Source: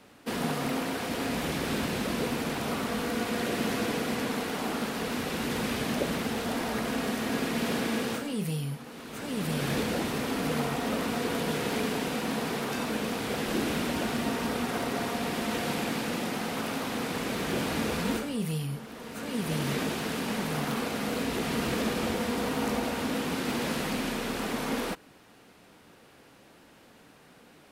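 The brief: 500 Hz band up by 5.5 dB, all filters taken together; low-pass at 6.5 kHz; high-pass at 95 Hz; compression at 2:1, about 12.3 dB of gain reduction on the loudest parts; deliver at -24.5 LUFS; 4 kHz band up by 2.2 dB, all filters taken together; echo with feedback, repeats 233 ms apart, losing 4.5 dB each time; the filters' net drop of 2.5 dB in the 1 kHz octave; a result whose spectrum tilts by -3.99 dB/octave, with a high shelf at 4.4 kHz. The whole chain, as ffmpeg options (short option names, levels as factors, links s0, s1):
-af "highpass=95,lowpass=6500,equalizer=f=500:t=o:g=8,equalizer=f=1000:t=o:g=-7,equalizer=f=4000:t=o:g=7.5,highshelf=f=4400:g=-7.5,acompressor=threshold=0.00708:ratio=2,aecho=1:1:233|466|699|932|1165|1398|1631|1864|2097:0.596|0.357|0.214|0.129|0.0772|0.0463|0.0278|0.0167|0.01,volume=3.98"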